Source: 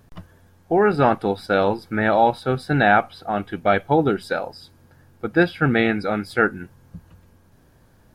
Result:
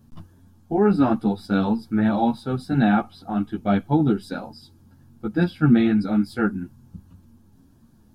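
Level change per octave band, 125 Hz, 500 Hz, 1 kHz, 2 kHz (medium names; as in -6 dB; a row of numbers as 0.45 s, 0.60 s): +1.5 dB, -6.5 dB, -7.0 dB, -10.5 dB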